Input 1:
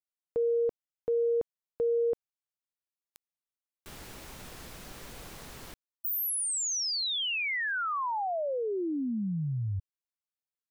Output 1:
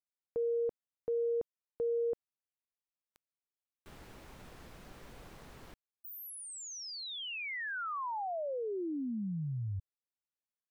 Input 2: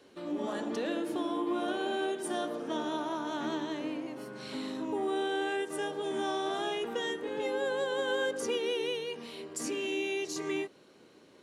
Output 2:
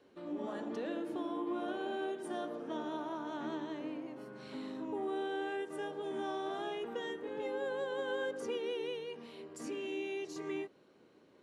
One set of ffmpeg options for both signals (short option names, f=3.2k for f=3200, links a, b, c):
-af "highshelf=f=3.3k:g=-10.5,volume=-5dB"